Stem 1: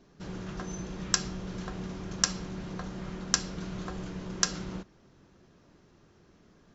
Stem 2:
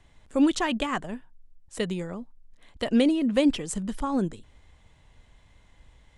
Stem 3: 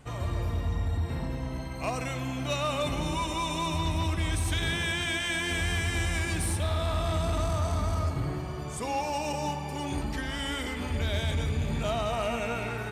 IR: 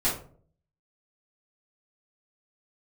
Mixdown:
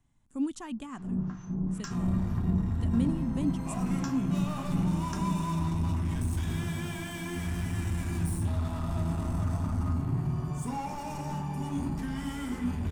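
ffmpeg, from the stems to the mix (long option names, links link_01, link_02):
-filter_complex "[0:a]acrossover=split=1000[link_01][link_02];[link_01]aeval=exprs='val(0)*(1-1/2+1/2*cos(2*PI*2.2*n/s))':channel_layout=same[link_03];[link_02]aeval=exprs='val(0)*(1-1/2-1/2*cos(2*PI*2.2*n/s))':channel_layout=same[link_04];[link_03][link_04]amix=inputs=2:normalize=0,lowpass=frequency=1900:poles=1,adelay=700,volume=-2.5dB,asplit=2[link_05][link_06];[link_06]volume=-12dB[link_07];[1:a]highshelf=frequency=4400:gain=9.5,volume=-15.5dB,asplit=2[link_08][link_09];[2:a]acompressor=mode=upward:threshold=-44dB:ratio=2.5,asoftclip=type=tanh:threshold=-33.5dB,adelay=1850,volume=-3.5dB,asplit=2[link_10][link_11];[link_11]volume=-11dB[link_12];[link_09]apad=whole_len=328535[link_13];[link_05][link_13]sidechaincompress=threshold=-45dB:ratio=8:attack=16:release=193[link_14];[3:a]atrim=start_sample=2205[link_15];[link_07][link_12]amix=inputs=2:normalize=0[link_16];[link_16][link_15]afir=irnorm=-1:irlink=0[link_17];[link_14][link_08][link_10][link_17]amix=inputs=4:normalize=0,equalizer=frequency=125:width_type=o:width=1:gain=7,equalizer=frequency=250:width_type=o:width=1:gain=9,equalizer=frequency=500:width_type=o:width=1:gain=-9,equalizer=frequency=1000:width_type=o:width=1:gain=3,equalizer=frequency=2000:width_type=o:width=1:gain=-5,equalizer=frequency=4000:width_type=o:width=1:gain=-8"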